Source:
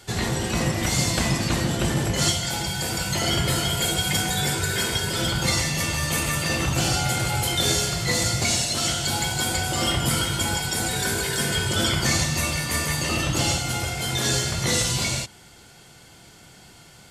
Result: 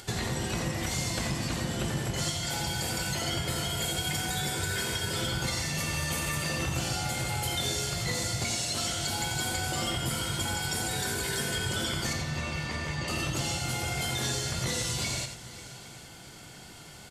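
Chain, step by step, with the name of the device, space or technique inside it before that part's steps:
upward and downward compression (upward compression, threshold −46 dBFS; downward compressor 6 to 1, threshold −29 dBFS, peak gain reduction 11.5 dB)
0:12.13–0:13.08: high-frequency loss of the air 140 metres
multi-tap delay 87/539/810 ms −8/−17.5/−19 dB

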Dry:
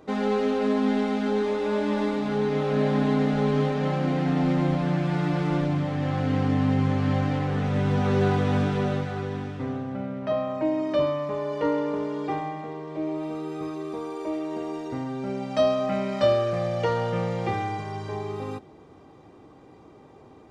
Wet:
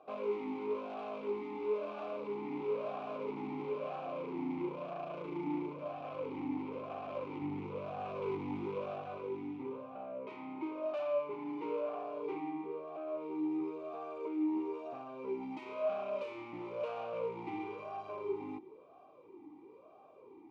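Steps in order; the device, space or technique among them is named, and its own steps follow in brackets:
talk box (tube saturation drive 31 dB, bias 0.5; formant filter swept between two vowels a-u 1 Hz)
0:07.42–0:09.18: low-shelf EQ 110 Hz +11 dB
level +5.5 dB

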